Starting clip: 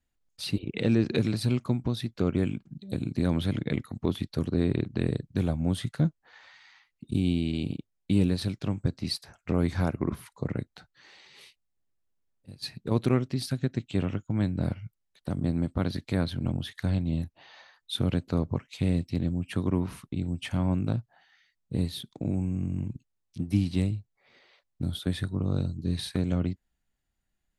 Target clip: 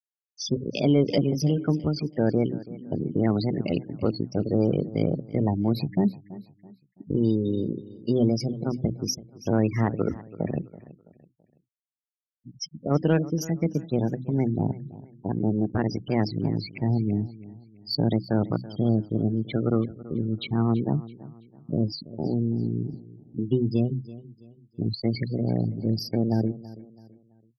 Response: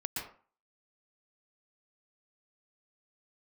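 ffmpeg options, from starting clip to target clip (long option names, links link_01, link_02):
-filter_complex "[0:a]bandreject=frequency=50:width_type=h:width=6,bandreject=frequency=100:width_type=h:width=6,bandreject=frequency=150:width_type=h:width=6,bandreject=frequency=200:width_type=h:width=6,bandreject=frequency=250:width_type=h:width=6,afftfilt=real='re*gte(hypot(re,im),0.0282)':imag='im*gte(hypot(re,im),0.0282)':win_size=1024:overlap=0.75,acontrast=76,asetrate=55563,aresample=44100,atempo=0.793701,asplit=2[link_01][link_02];[link_02]aecho=0:1:331|662|993:0.126|0.0453|0.0163[link_03];[link_01][link_03]amix=inputs=2:normalize=0,volume=-3dB"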